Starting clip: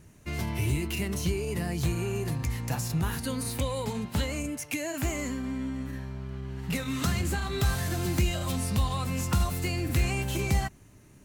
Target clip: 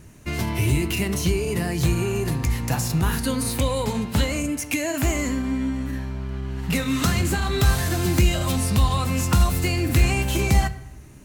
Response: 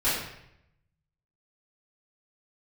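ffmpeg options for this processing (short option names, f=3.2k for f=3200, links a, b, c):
-filter_complex "[0:a]acontrast=80,asplit=2[a][b];[1:a]atrim=start_sample=2205[c];[b][c]afir=irnorm=-1:irlink=0,volume=-25dB[d];[a][d]amix=inputs=2:normalize=0"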